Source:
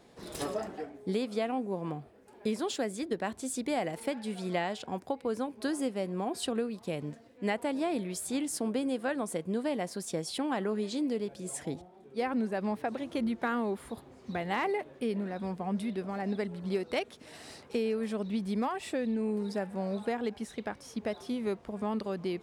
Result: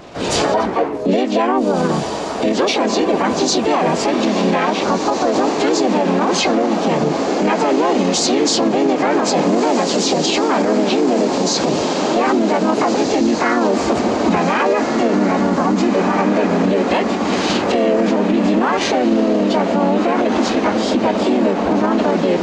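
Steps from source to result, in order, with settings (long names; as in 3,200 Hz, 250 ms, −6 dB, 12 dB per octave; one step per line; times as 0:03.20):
hearing-aid frequency compression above 1,100 Hz 1.5 to 1
camcorder AGC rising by 15 dB per second
pitch-shifted copies added +3 semitones −2 dB, +7 semitones 0 dB
feedback delay with all-pass diffusion 1,718 ms, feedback 60%, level −7.5 dB
boost into a limiter +22.5 dB
level −6 dB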